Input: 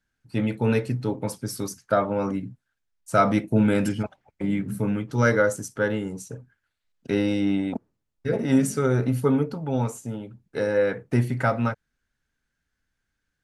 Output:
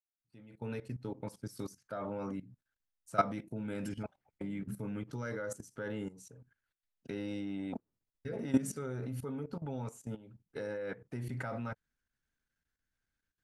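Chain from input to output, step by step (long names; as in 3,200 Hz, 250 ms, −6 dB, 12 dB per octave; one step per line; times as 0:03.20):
fade in at the beginning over 1.67 s
output level in coarse steps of 16 dB
level −6.5 dB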